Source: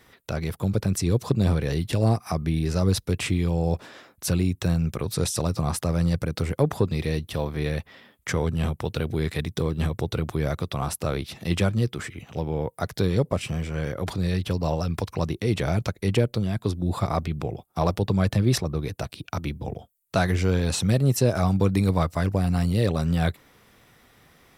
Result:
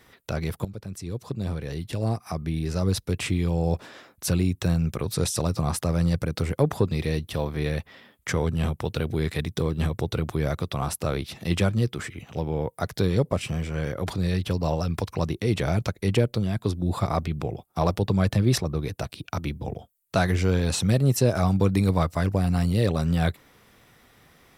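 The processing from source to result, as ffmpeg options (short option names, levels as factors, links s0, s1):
-filter_complex "[0:a]asplit=2[s0][s1];[s0]atrim=end=0.65,asetpts=PTS-STARTPTS,afade=t=out:st=0.646:d=0.004:c=hsin:silence=0.177828[s2];[s1]atrim=start=0.65,asetpts=PTS-STARTPTS,afade=t=in:d=3.09:silence=0.177828[s3];[s2][s3]concat=n=2:v=0:a=1"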